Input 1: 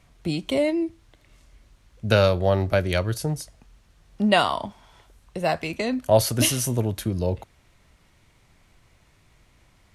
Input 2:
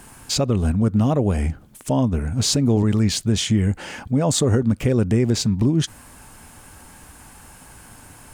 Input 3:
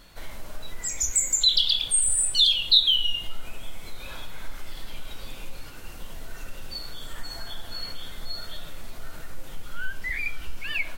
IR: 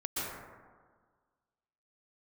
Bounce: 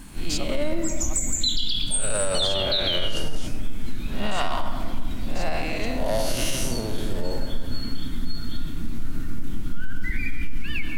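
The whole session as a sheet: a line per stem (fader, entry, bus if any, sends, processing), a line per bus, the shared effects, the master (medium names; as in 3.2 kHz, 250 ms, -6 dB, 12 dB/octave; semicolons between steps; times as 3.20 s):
-8.5 dB, 0.00 s, send -13.5 dB, spectral blur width 195 ms; overdrive pedal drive 19 dB, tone 5.5 kHz, clips at -7.5 dBFS
-3.5 dB, 0.00 s, no send, high-pass 900 Hz; auto duck -13 dB, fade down 1.85 s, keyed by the first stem
-4.5 dB, 0.00 s, send -6.5 dB, resonant low shelf 380 Hz +12.5 dB, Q 3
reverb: on, RT60 1.6 s, pre-delay 112 ms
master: peak limiter -13.5 dBFS, peak gain reduction 8 dB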